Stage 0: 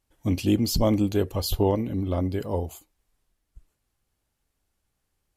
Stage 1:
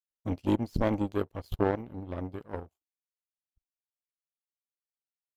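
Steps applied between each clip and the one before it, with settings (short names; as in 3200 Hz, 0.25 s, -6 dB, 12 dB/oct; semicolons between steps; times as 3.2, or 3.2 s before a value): high shelf 3100 Hz -11 dB; power-law curve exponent 2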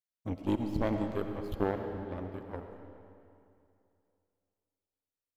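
digital reverb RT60 2.6 s, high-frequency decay 0.85×, pre-delay 50 ms, DRR 5.5 dB; gain -4 dB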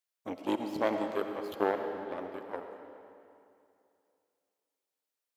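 HPF 410 Hz 12 dB/oct; gain +5 dB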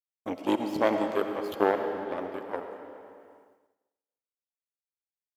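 expander -59 dBFS; notch 4000 Hz, Q 23; gain +5 dB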